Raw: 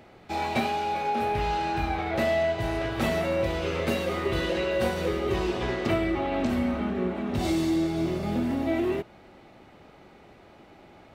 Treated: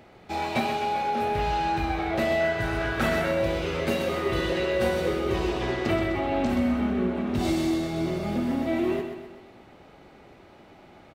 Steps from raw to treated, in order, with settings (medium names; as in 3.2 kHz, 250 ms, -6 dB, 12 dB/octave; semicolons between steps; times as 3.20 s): 2.40–3.32 s: peaking EQ 1.5 kHz +10 dB 0.47 oct; feedback delay 127 ms, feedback 49%, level -8 dB